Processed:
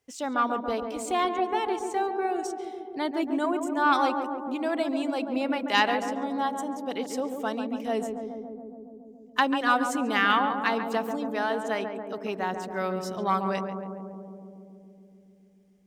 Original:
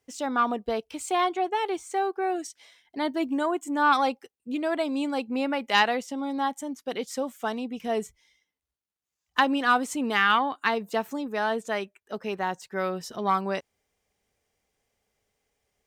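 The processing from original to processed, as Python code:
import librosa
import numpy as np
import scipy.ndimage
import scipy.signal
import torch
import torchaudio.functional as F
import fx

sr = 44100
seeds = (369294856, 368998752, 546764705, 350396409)

y = fx.echo_filtered(x, sr, ms=140, feedback_pct=83, hz=1100.0, wet_db=-5.5)
y = y * 10.0 ** (-1.5 / 20.0)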